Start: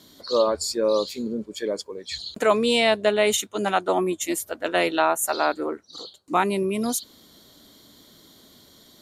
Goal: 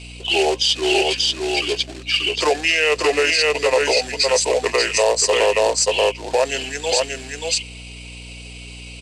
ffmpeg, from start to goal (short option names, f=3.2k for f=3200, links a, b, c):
-filter_complex "[0:a]equalizer=f=2.2k:t=o:w=0.42:g=-8,aecho=1:1:5.2:0.35,acrossover=split=560|930[a][b][c];[a]acompressor=threshold=-36dB:ratio=20[d];[d][b][c]amix=inputs=3:normalize=0,acrusher=bits=3:mode=log:mix=0:aa=0.000001,asetrate=30296,aresample=44100,atempo=1.45565,highpass=f=430:w=0.5412,highpass=f=430:w=1.3066,equalizer=f=490:t=q:w=4:g=5,equalizer=f=840:t=q:w=4:g=-4,equalizer=f=1.2k:t=q:w=4:g=-7,equalizer=f=2.6k:t=q:w=4:g=6,equalizer=f=4.4k:t=q:w=4:g=6,equalizer=f=7.9k:t=q:w=4:g=4,lowpass=f=8.9k:w=0.5412,lowpass=f=8.9k:w=1.3066,asplit=2[e][f];[f]aecho=0:1:583:0.668[g];[e][g]amix=inputs=2:normalize=0,aeval=exprs='val(0)+0.00447*(sin(2*PI*60*n/s)+sin(2*PI*2*60*n/s)/2+sin(2*PI*3*60*n/s)/3+sin(2*PI*4*60*n/s)/4+sin(2*PI*5*60*n/s)/5)':c=same,alimiter=level_in=16.5dB:limit=-1dB:release=50:level=0:latency=1,volume=-6.5dB"